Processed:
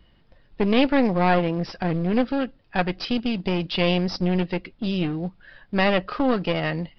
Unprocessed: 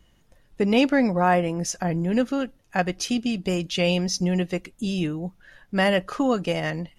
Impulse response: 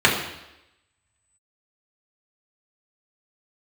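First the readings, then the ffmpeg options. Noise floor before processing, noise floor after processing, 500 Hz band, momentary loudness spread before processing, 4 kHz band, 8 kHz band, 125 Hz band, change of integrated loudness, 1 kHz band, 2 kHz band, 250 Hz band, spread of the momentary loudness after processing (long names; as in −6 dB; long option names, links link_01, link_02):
−60 dBFS, −58 dBFS, +0.5 dB, 9 LU, +0.5 dB, below −20 dB, +1.0 dB, +0.5 dB, +0.5 dB, 0.0 dB, +0.5 dB, 8 LU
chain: -filter_complex "[0:a]asplit=2[link_01][link_02];[link_02]acrusher=bits=5:mode=log:mix=0:aa=0.000001,volume=-6dB[link_03];[link_01][link_03]amix=inputs=2:normalize=0,aeval=exprs='clip(val(0),-1,0.0562)':channel_layout=same,aresample=11025,aresample=44100,volume=-1dB"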